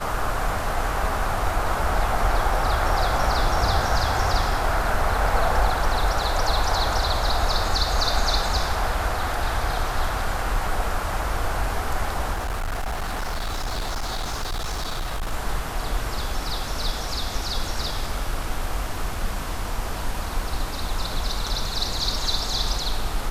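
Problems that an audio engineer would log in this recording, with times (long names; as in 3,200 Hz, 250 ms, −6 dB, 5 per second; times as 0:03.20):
0:12.32–0:15.33: clipping −23.5 dBFS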